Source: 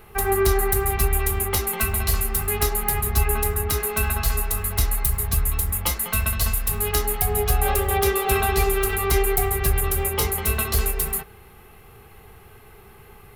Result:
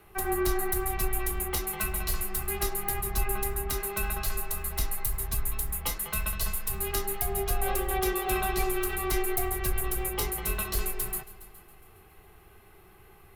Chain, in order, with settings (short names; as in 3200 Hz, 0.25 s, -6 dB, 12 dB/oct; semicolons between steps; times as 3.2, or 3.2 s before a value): multi-head echo 0.138 s, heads all three, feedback 41%, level -23.5 dB; frequency shift -23 Hz; gain -7.5 dB